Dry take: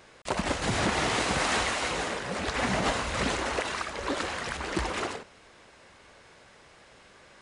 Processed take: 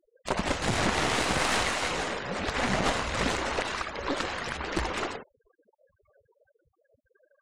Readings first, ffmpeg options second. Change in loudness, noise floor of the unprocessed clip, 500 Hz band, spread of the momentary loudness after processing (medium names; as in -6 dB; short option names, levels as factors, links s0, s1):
+0.5 dB, -55 dBFS, 0.0 dB, 7 LU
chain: -af "afftfilt=real='re*gte(hypot(re,im),0.00794)':imag='im*gte(hypot(re,im),0.00794)':win_size=1024:overlap=0.75,aeval=exprs='0.168*(cos(1*acos(clip(val(0)/0.168,-1,1)))-cos(1*PI/2))+0.0668*(cos(2*acos(clip(val(0)/0.168,-1,1)))-cos(2*PI/2))':c=same"